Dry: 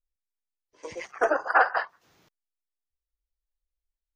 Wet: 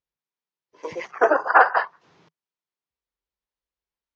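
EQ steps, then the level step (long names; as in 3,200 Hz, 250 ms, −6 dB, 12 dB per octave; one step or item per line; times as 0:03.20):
high-frequency loss of the air 100 metres
loudspeaker in its box 110–7,400 Hz, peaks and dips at 160 Hz +6 dB, 410 Hz +4 dB, 990 Hz +5 dB
+5.0 dB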